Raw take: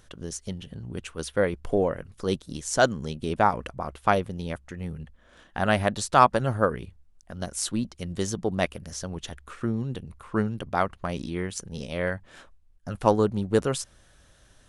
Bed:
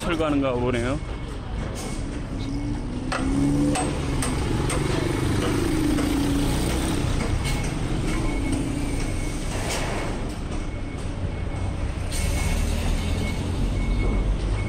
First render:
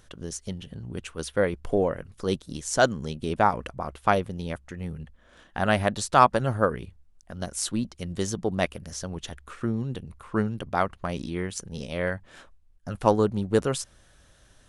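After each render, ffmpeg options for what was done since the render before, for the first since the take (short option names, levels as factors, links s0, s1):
-af anull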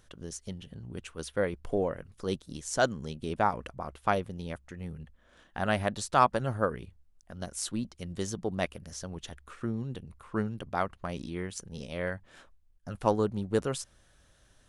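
-af "volume=0.531"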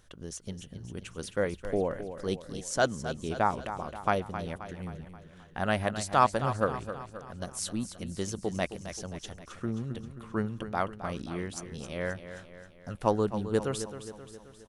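-af "aecho=1:1:265|530|795|1060|1325|1590:0.282|0.149|0.0792|0.042|0.0222|0.0118"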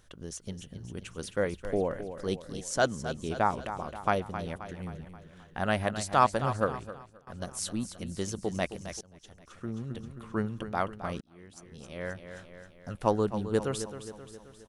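-filter_complex "[0:a]asplit=4[s0][s1][s2][s3];[s0]atrim=end=7.27,asetpts=PTS-STARTPTS,afade=t=out:st=6.61:d=0.66:silence=0.1[s4];[s1]atrim=start=7.27:end=9.01,asetpts=PTS-STARTPTS,afade=t=in:d=0.004:c=hsin:silence=0.1,afade=t=out:st=1.736:d=0.004:c=hsin:silence=0.0707946[s5];[s2]atrim=start=9.01:end=11.21,asetpts=PTS-STARTPTS,afade=t=in:d=1.08:silence=0.0707946,afade=t=out:st=2.196:d=0.004:c=hsin[s6];[s3]atrim=start=11.21,asetpts=PTS-STARTPTS,afade=t=in:d=1.28[s7];[s4][s5][s6][s7]concat=n=4:v=0:a=1"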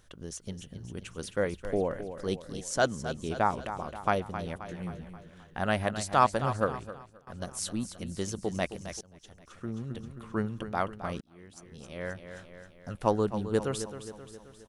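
-filter_complex "[0:a]asettb=1/sr,asplit=3[s0][s1][s2];[s0]atrim=end=4.664[s3];[s1]atrim=start=4.66:end=5.31,asetpts=PTS-STARTPTS,afade=t=in:d=0.004:c=qsin,afade=t=out:st=0.646:d=0.004:c=qsin,asplit=2[s4][s5];[s5]adelay=17,volume=0.501[s6];[s4][s6]amix=inputs=2:normalize=0,atrim=end_sample=28665[s7];[s2]atrim=start=5.306[s8];[s3][s7]acrossfade=d=0.004:c1=hsin:c2=qsin[s9];[s9][s8]acrossfade=d=0.004:c1=qsin:c2=hsin"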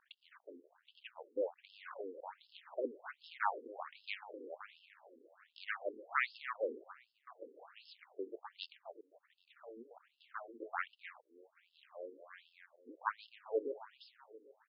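-af "aeval=exprs='max(val(0),0)':c=same,afftfilt=real='re*between(b*sr/1024,350*pow(3800/350,0.5+0.5*sin(2*PI*1.3*pts/sr))/1.41,350*pow(3800/350,0.5+0.5*sin(2*PI*1.3*pts/sr))*1.41)':imag='im*between(b*sr/1024,350*pow(3800/350,0.5+0.5*sin(2*PI*1.3*pts/sr))/1.41,350*pow(3800/350,0.5+0.5*sin(2*PI*1.3*pts/sr))*1.41)':win_size=1024:overlap=0.75"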